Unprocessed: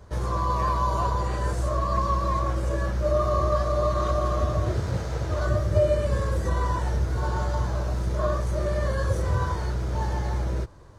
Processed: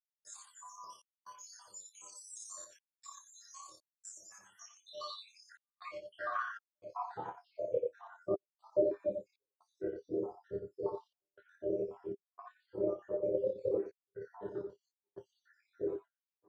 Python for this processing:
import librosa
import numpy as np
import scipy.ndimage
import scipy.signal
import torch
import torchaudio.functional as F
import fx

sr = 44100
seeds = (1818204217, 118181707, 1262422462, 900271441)

y = fx.spec_dropout(x, sr, seeds[0], share_pct=80)
y = scipy.signal.sosfilt(scipy.signal.butter(2, 170.0, 'highpass', fs=sr, output='sos'), y)
y = fx.notch(y, sr, hz=2100.0, q=12.0)
y = fx.doubler(y, sr, ms=15.0, db=-4.5)
y = fx.room_early_taps(y, sr, ms=(58, 75), db=(-4.0, -17.5))
y = fx.dereverb_blind(y, sr, rt60_s=1.7)
y = fx.step_gate(y, sr, bpm=89, pattern='.xxx.xxxxxx', floor_db=-60.0, edge_ms=4.5)
y = fx.stretch_grains(y, sr, factor=1.5, grain_ms=60.0)
y = fx.filter_sweep_bandpass(y, sr, from_hz=7200.0, to_hz=400.0, start_s=4.25, end_s=8.18, q=6.1)
y = y * librosa.db_to_amplitude(10.0)